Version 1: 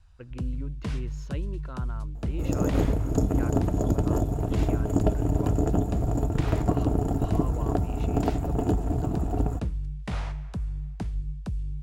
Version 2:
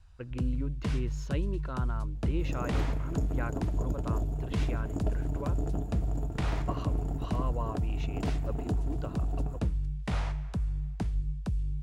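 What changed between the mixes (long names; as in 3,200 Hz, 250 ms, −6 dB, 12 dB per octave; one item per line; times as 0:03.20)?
speech +3.0 dB
second sound −11.5 dB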